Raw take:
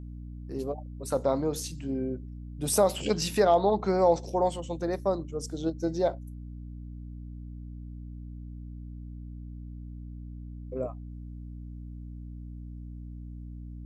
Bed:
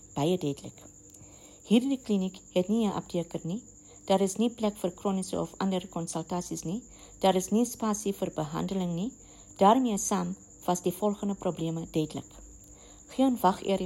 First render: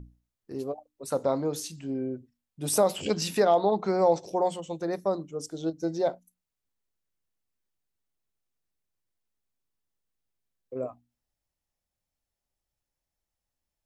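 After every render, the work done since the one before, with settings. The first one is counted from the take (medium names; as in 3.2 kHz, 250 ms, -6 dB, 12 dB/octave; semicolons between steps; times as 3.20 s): hum notches 60/120/180/240/300 Hz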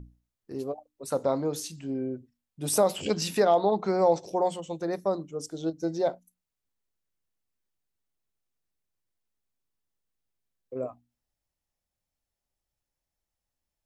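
no audible change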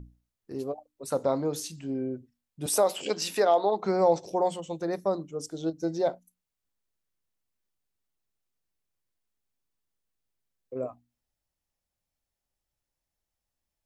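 2.66–3.83 s: high-pass 340 Hz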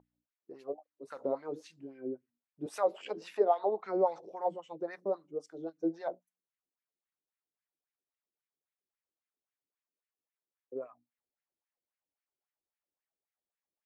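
wah-wah 3.7 Hz 320–2100 Hz, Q 2.6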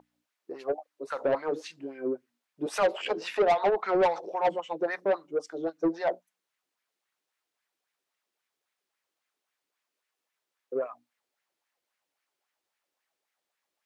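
overdrive pedal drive 21 dB, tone 3.9 kHz, clips at -15 dBFS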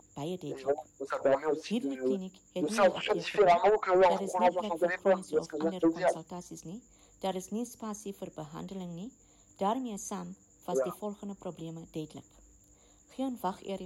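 add bed -10 dB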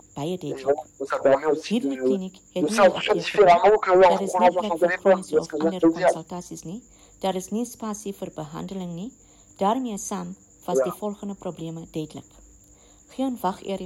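trim +8.5 dB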